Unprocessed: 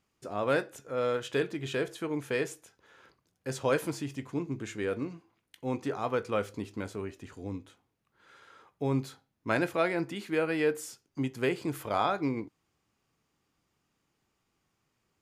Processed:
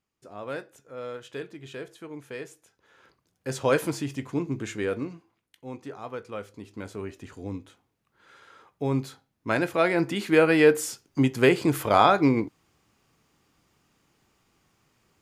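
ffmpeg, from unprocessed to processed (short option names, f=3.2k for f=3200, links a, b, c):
-af "volume=21dB,afade=t=in:st=2.52:d=1.22:silence=0.251189,afade=t=out:st=4.7:d=0.95:silence=0.281838,afade=t=in:st=6.58:d=0.55:silence=0.354813,afade=t=in:st=9.67:d=0.63:silence=0.446684"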